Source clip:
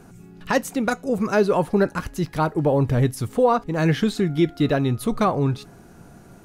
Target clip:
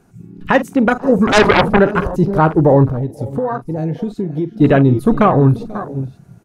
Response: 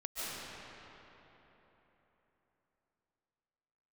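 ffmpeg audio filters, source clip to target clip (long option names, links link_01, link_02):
-filter_complex "[0:a]aecho=1:1:44|485|530|545:0.211|0.106|0.112|0.141,asplit=3[link_01][link_02][link_03];[link_01]afade=type=out:start_time=2.88:duration=0.02[link_04];[link_02]acompressor=threshold=-29dB:ratio=4,afade=type=in:start_time=2.88:duration=0.02,afade=type=out:start_time=4.6:duration=0.02[link_05];[link_03]afade=type=in:start_time=4.6:duration=0.02[link_06];[link_04][link_05][link_06]amix=inputs=3:normalize=0,afwtdn=0.0282,asettb=1/sr,asplit=3[link_07][link_08][link_09];[link_07]atrim=end=1.274[link_10];[link_08]atrim=start=1.27:end=1.79,asetpts=PTS-STARTPTS,afade=type=in:duration=0.004:curve=qsin,afade=type=out:start_time=0.516:duration=0.004:curve=qsin,aeval=exprs='0.376*(cos(1*acos(clip(val(0)/0.376,-1,1)))-cos(1*PI/2))+0.0473*(cos(3*acos(clip(val(0)/0.376,-1,1)))-cos(3*PI/2))+0.133*(cos(7*acos(clip(val(0)/0.376,-1,1)))-cos(7*PI/2))':channel_layout=same[link_11];[link_09]atrim=start=1.786[link_12];[link_10][link_11]acrossfade=duration=0.004:curve1=hsin:curve2=qsin[link_13];[link_13][link_12]acrossfade=duration=0.004:curve1=qsin:curve2=hsin,alimiter=level_in=11dB:limit=-1dB:release=50:level=0:latency=1,volume=-1dB"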